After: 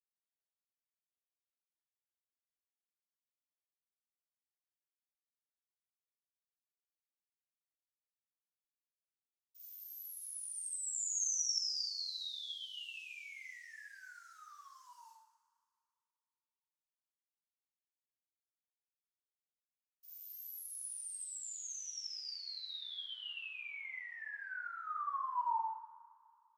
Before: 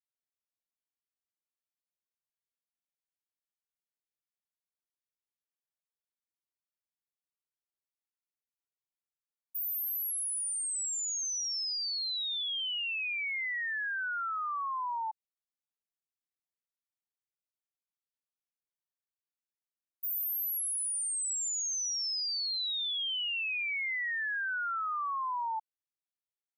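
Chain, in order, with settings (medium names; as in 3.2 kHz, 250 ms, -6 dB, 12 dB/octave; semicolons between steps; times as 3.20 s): companded quantiser 6-bit; two-slope reverb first 0.79 s, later 2.5 s, from -18 dB, DRR -6.5 dB; band-pass sweep 6.1 kHz -> 850 Hz, 20.86–24.20 s; trim -8 dB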